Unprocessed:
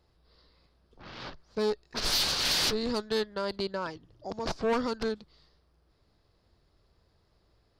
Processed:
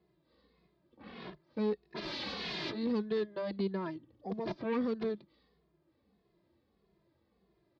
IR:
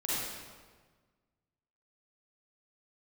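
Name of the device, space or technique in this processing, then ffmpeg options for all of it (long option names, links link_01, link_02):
barber-pole flanger into a guitar amplifier: -filter_complex "[0:a]asplit=2[link_01][link_02];[link_02]adelay=2.4,afreqshift=-1.6[link_03];[link_01][link_03]amix=inputs=2:normalize=1,asoftclip=type=tanh:threshold=-28dB,highpass=97,equalizer=frequency=100:width_type=q:width=4:gain=-9,equalizer=frequency=200:width_type=q:width=4:gain=8,equalizer=frequency=340:width_type=q:width=4:gain=7,equalizer=frequency=820:width_type=q:width=4:gain=-3,equalizer=frequency=1400:width_type=q:width=4:gain=-8,equalizer=frequency=2900:width_type=q:width=4:gain=-5,lowpass=frequency=3500:width=0.5412,lowpass=frequency=3500:width=1.3066"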